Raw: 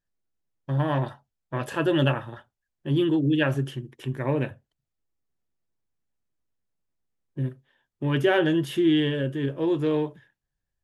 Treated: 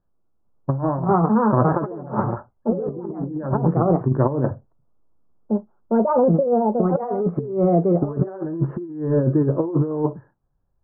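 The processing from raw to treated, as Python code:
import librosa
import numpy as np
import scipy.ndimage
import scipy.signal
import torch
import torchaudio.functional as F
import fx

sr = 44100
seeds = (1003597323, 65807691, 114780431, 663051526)

y = fx.echo_pitch(x, sr, ms=429, semitones=4, count=2, db_per_echo=-3.0)
y = fx.over_compress(y, sr, threshold_db=-28.0, ratio=-0.5)
y = scipy.signal.sosfilt(scipy.signal.butter(8, 1300.0, 'lowpass', fs=sr, output='sos'), y)
y = y * 10.0 ** (9.0 / 20.0)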